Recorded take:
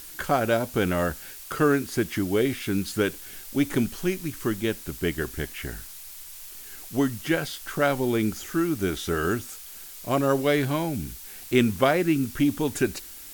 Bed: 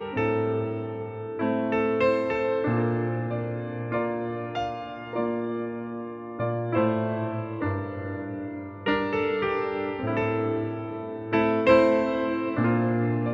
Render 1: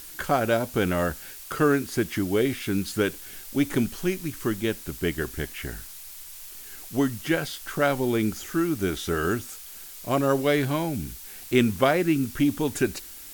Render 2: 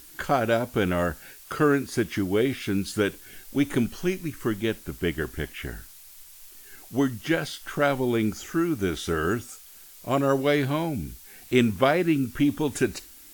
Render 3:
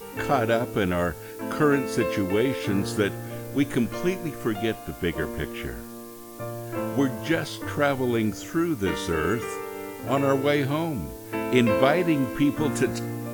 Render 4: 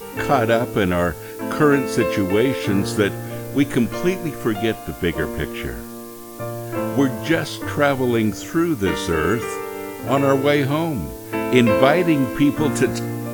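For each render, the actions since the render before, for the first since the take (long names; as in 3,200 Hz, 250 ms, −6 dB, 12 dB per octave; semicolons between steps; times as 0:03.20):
no processing that can be heard
noise reduction from a noise print 6 dB
mix in bed −6.5 dB
level +5.5 dB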